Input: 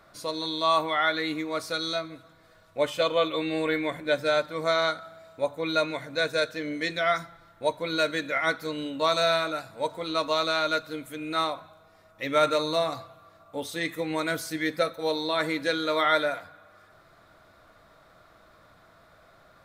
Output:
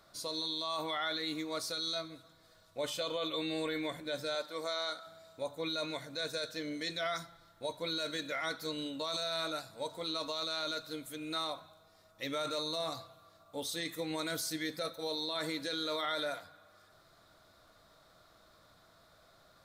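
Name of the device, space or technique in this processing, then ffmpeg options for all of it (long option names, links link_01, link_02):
over-bright horn tweeter: -filter_complex "[0:a]asettb=1/sr,asplit=3[link_01][link_02][link_03];[link_01]atrim=end=4.354[link_04];[link_02]atrim=start=4.35:end=5.07,asetpts=PTS-STARTPTS,afade=type=in:duration=0.004:curve=qsin,afade=type=out:start_time=0.716:duration=0.004:curve=qsin,highpass=300[link_05];[link_03]atrim=start=5.066[link_06];[link_04][link_05]acrossfade=duration=0.004:curve1=hsin:curve2=qsin[link_07];[link_07][link_06]acrossfade=duration=0.004:curve1=qsin:curve2=hsin,highshelf=frequency=3100:width_type=q:width=1.5:gain=6.5,alimiter=limit=-20dB:level=0:latency=1:release=18,volume=-7dB"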